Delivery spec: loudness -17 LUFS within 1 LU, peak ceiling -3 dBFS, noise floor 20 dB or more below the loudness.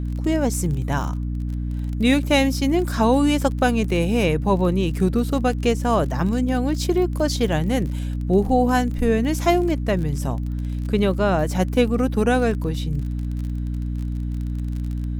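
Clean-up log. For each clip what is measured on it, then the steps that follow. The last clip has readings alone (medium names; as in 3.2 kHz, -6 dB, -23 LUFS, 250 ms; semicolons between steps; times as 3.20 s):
tick rate 34 per s; hum 60 Hz; highest harmonic 300 Hz; hum level -23 dBFS; loudness -21.5 LUFS; peak level -4.0 dBFS; loudness target -17.0 LUFS
-> de-click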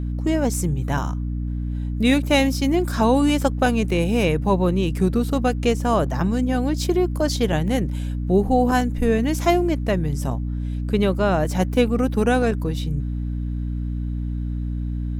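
tick rate 0.46 per s; hum 60 Hz; highest harmonic 300 Hz; hum level -23 dBFS
-> hum notches 60/120/180/240/300 Hz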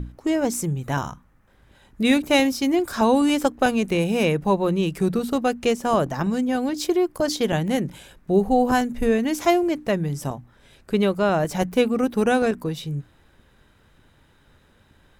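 hum not found; loudness -22.0 LUFS; peak level -5.5 dBFS; loudness target -17.0 LUFS
-> trim +5 dB; peak limiter -3 dBFS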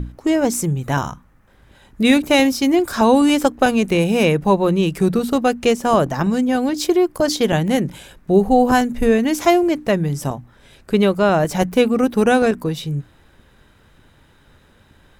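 loudness -17.5 LUFS; peak level -3.0 dBFS; noise floor -53 dBFS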